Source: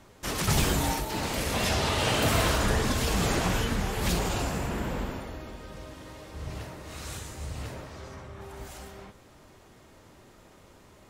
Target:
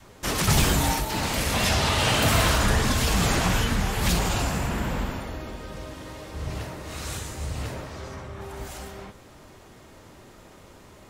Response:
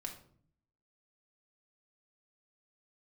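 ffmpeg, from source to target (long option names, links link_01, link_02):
-filter_complex "[0:a]adynamicequalizer=threshold=0.00794:dfrequency=410:dqfactor=1.1:tfrequency=410:tqfactor=1.1:attack=5:release=100:ratio=0.375:range=2.5:mode=cutabove:tftype=bell,asplit=2[link_01][link_02];[link_02]asoftclip=type=tanh:threshold=-23dB,volume=-10dB[link_03];[link_01][link_03]amix=inputs=2:normalize=0,volume=3dB"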